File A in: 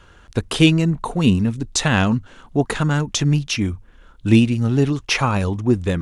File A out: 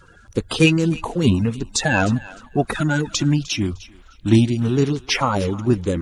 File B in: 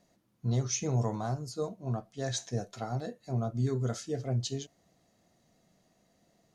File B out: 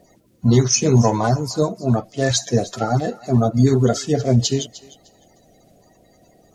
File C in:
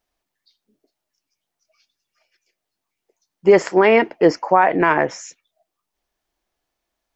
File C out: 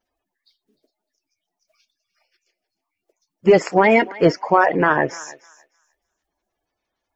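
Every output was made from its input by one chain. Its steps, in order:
spectral magnitudes quantised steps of 30 dB
feedback echo with a high-pass in the loop 304 ms, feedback 20%, high-pass 870 Hz, level −17 dB
normalise the peak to −2 dBFS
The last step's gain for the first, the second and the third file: −0.5, +16.0, 0.0 decibels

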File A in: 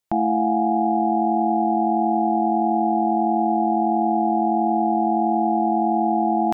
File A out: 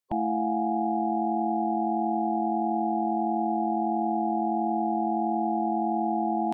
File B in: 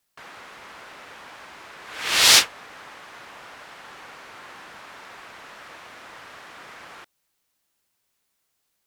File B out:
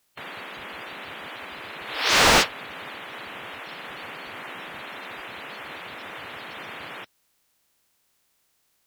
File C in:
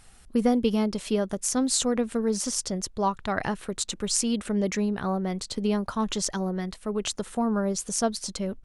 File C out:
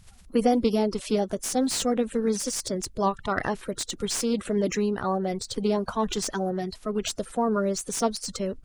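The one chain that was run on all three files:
spectral magnitudes quantised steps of 30 dB
slew-rate limiting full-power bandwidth 260 Hz
loudness normalisation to −27 LKFS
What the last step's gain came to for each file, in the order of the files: −6.0, +6.0, +1.5 decibels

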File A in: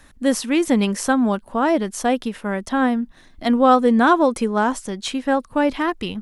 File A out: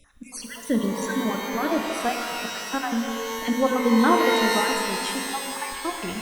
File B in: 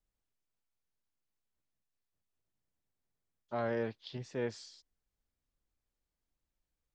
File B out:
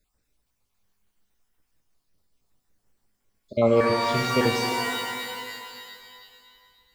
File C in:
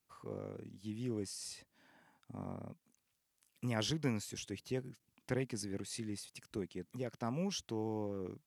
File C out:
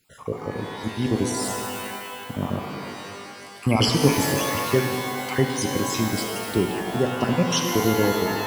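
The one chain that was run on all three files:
time-frequency cells dropped at random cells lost 51%
reverb with rising layers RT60 2.2 s, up +12 semitones, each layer −2 dB, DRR 3.5 dB
loudness normalisation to −24 LKFS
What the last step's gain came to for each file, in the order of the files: −5.5, +15.0, +18.0 decibels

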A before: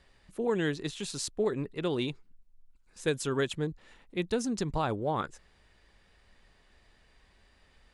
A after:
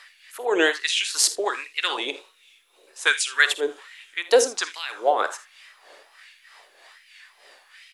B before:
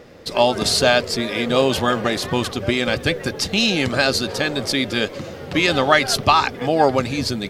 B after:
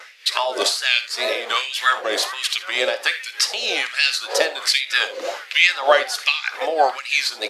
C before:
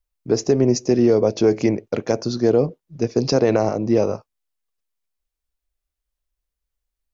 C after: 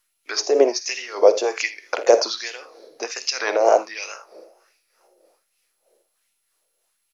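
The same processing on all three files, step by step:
high-pass filter 310 Hz 24 dB per octave
parametric band 680 Hz −5 dB 2.1 octaves
downward compressor 3 to 1, threshold −28 dBFS
coupled-rooms reverb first 0.39 s, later 4.2 s, from −20 dB, DRR 17.5 dB
tape wow and flutter 99 cents
amplitude tremolo 3.2 Hz, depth 66%
ambience of single reflections 50 ms −16.5 dB, 61 ms −18 dB, 80 ms −18 dB
auto-filter high-pass sine 1.3 Hz 510–2,500 Hz
MP2 192 kbit/s 44,100 Hz
normalise the peak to −1.5 dBFS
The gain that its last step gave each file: +17.0, +10.0, +15.5 decibels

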